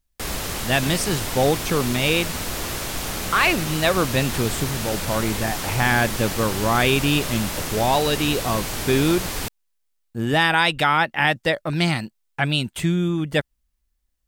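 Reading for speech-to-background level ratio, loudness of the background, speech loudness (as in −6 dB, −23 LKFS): 5.0 dB, −27.0 LKFS, −22.0 LKFS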